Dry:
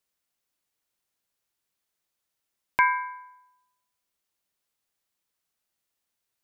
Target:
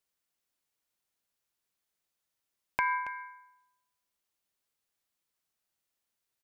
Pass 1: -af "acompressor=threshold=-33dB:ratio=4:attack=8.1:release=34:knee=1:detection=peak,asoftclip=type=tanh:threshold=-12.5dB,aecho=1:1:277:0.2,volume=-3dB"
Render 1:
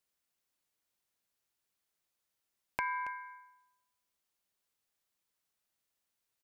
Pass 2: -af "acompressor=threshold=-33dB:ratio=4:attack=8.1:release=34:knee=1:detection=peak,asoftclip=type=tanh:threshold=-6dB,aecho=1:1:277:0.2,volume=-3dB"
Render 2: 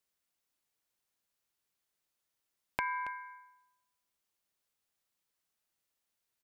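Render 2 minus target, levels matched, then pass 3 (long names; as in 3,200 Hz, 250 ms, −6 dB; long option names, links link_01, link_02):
downward compressor: peak gain reduction +6 dB
-af "acompressor=threshold=-25dB:ratio=4:attack=8.1:release=34:knee=1:detection=peak,asoftclip=type=tanh:threshold=-6dB,aecho=1:1:277:0.2,volume=-3dB"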